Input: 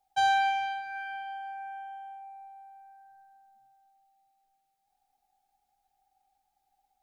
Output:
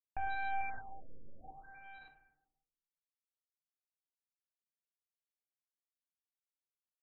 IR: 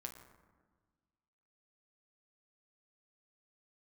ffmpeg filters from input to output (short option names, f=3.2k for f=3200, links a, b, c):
-filter_complex "[0:a]acrusher=bits=3:dc=4:mix=0:aa=0.000001,asuperstop=centerf=3300:order=4:qfactor=3.2,alimiter=level_in=3.5dB:limit=-24dB:level=0:latency=1,volume=-3.5dB,equalizer=f=2.6k:t=o:w=1.6:g=-8.5,aecho=1:1:574:0.299[a];[1:a]atrim=start_sample=2205,asetrate=66150,aresample=44100[b];[a][b]afir=irnorm=-1:irlink=0,afftfilt=real='re*lt(b*sr/1024,550*pow(4200/550,0.5+0.5*sin(2*PI*0.61*pts/sr)))':imag='im*lt(b*sr/1024,550*pow(4200/550,0.5+0.5*sin(2*PI*0.61*pts/sr)))':win_size=1024:overlap=0.75,volume=11.5dB"